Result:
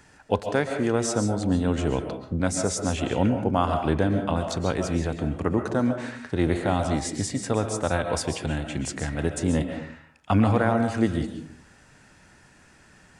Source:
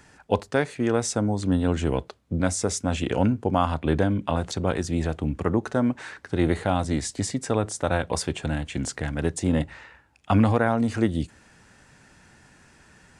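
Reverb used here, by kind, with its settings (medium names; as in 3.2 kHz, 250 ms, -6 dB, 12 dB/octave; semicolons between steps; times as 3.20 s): algorithmic reverb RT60 0.54 s, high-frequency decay 0.45×, pre-delay 95 ms, DRR 5.5 dB; trim -1 dB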